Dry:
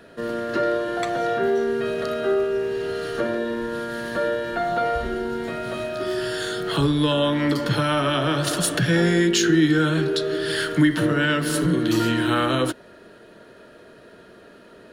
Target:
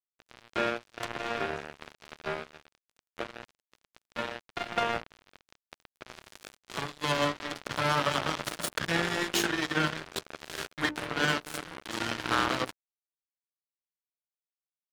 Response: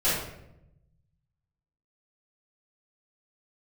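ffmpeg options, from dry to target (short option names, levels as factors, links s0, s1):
-filter_complex "[0:a]acrossover=split=640|2500[s0][s1][s2];[s0]asoftclip=type=tanh:threshold=0.1[s3];[s3][s1][s2]amix=inputs=3:normalize=0,equalizer=f=990:w=1.6:g=3,asplit=2[s4][s5];[s5]aecho=0:1:768:0.0891[s6];[s4][s6]amix=inputs=2:normalize=0,aresample=22050,aresample=44100,acrusher=bits=2:mix=0:aa=0.5,highpass=55,highshelf=f=2600:g=-7,bandreject=f=60:t=h:w=6,bandreject=f=120:t=h:w=6,bandreject=f=180:t=h:w=6,bandreject=f=240:t=h:w=6,bandreject=f=300:t=h:w=6,bandreject=f=360:t=h:w=6,bandreject=f=420:t=h:w=6,bandreject=f=480:t=h:w=6,bandreject=f=540:t=h:w=6,bandreject=f=600:t=h:w=6,aeval=exprs='sgn(val(0))*max(abs(val(0))-0.00708,0)':c=same,volume=0.794"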